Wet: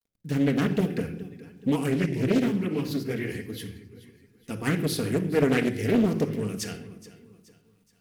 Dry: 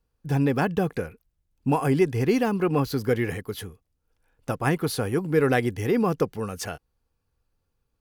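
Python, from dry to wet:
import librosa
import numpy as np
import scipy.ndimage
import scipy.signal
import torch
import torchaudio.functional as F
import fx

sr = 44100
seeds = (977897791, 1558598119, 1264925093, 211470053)

y = fx.highpass(x, sr, hz=110.0, slope=6)
y = fx.band_shelf(y, sr, hz=860.0, db=-12.5, octaves=1.7)
y = fx.echo_feedback(y, sr, ms=424, feedback_pct=41, wet_db=-18)
y = fx.quant_dither(y, sr, seeds[0], bits=12, dither='none')
y = fx.chorus_voices(y, sr, voices=2, hz=1.1, base_ms=12, depth_ms=3.0, mix_pct=60, at=(1.89, 4.5), fade=0.02)
y = fx.room_shoebox(y, sr, seeds[1], volume_m3=2100.0, walls='furnished', distance_m=1.7)
y = fx.doppler_dist(y, sr, depth_ms=0.43)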